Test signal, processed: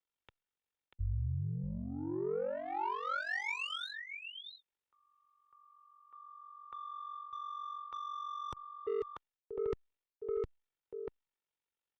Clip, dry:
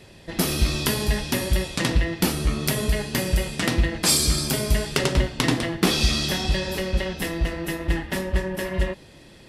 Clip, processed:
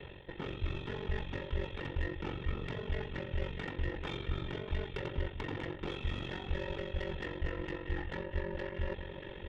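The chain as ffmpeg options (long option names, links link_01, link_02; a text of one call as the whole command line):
ffmpeg -i in.wav -filter_complex "[0:a]aresample=8000,aresample=44100,areverse,acompressor=threshold=-36dB:ratio=5,areverse,aecho=1:1:639:0.299,acrossover=split=2900[link_01][link_02];[link_02]acompressor=threshold=-55dB:ratio=4:attack=1:release=60[link_03];[link_01][link_03]amix=inputs=2:normalize=0,acrossover=split=120[link_04][link_05];[link_05]asoftclip=type=tanh:threshold=-34dB[link_06];[link_04][link_06]amix=inputs=2:normalize=0,aeval=exprs='val(0)*sin(2*PI*23*n/s)':channel_layout=same,aecho=1:1:2.2:0.47,volume=3dB" -ar 48000 -c:a libopus -b:a 96k out.opus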